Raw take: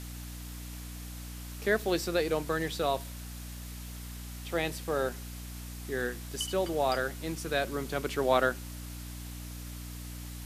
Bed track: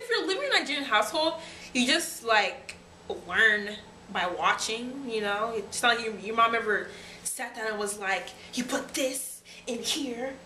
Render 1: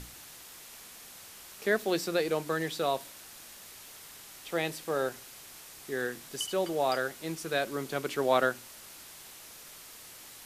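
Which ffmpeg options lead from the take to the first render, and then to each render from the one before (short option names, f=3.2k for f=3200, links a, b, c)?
-af "bandreject=f=60:t=h:w=6,bandreject=f=120:t=h:w=6,bandreject=f=180:t=h:w=6,bandreject=f=240:t=h:w=6,bandreject=f=300:t=h:w=6"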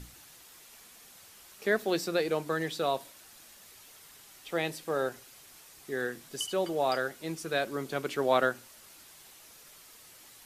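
-af "afftdn=nr=6:nf=-50"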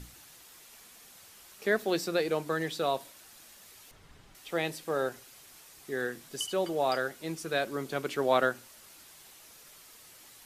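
-filter_complex "[0:a]asettb=1/sr,asplit=3[a][b][c];[a]atrim=end=3.914[d];[b]atrim=start=3.91:end=4.35,asetpts=PTS-STARTPTS,afade=t=in:d=0.004:c=qsin,afade=t=out:st=0.436:d=0.004:c=qsin,aemphasis=mode=reproduction:type=riaa[e];[c]atrim=start=4.346[f];[d][e]acrossfade=d=0.004:c1=hsin:c2=qsin[g];[g][f]acrossfade=d=0.004:c1=qsin:c2=hsin"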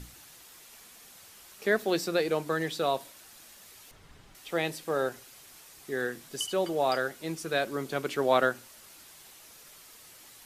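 -af "volume=1.5dB"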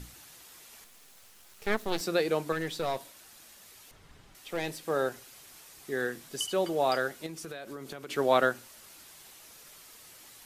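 -filter_complex "[0:a]asettb=1/sr,asplit=3[a][b][c];[a]atrim=end=0.844[d];[b]atrim=start=0.84:end=2.01,asetpts=PTS-STARTPTS,afade=t=in:d=0.004:c=qsin,afade=t=out:st=1.166:d=0.004:c=qsin,aeval=exprs='max(val(0),0)':c=same[e];[c]atrim=start=2.006[f];[d][e]acrossfade=d=0.004:c1=hsin:c2=qsin[g];[g][f]acrossfade=d=0.004:c1=qsin:c2=hsin,asettb=1/sr,asplit=3[h][i][j];[h]atrim=end=2.524[k];[i]atrim=start=2.52:end=4.84,asetpts=PTS-STARTPTS,afade=t=in:d=0.004:c=qsin,afade=t=out:st=2.316:d=0.004:c=qsin,aeval=exprs='(tanh(17.8*val(0)+0.4)-tanh(0.4))/17.8':c=same[l];[j]atrim=start=4.836[m];[k][l]acrossfade=d=0.004:c1=hsin:c2=qsin[n];[n][m]acrossfade=d=0.004:c1=qsin:c2=hsin,asettb=1/sr,asplit=3[o][p][q];[o]atrim=end=7.264[r];[p]atrim=start=7.26:end=8.1,asetpts=PTS-STARTPTS,afade=t=in:d=0.004:c=qsin,afade=t=out:st=0.836:d=0.004:c=qsin,acompressor=threshold=-37dB:ratio=8:attack=3.2:release=140:knee=1:detection=peak[s];[q]atrim=start=8.096[t];[r][s]acrossfade=d=0.004:c1=hsin:c2=qsin[u];[u][t]acrossfade=d=0.004:c1=qsin:c2=hsin"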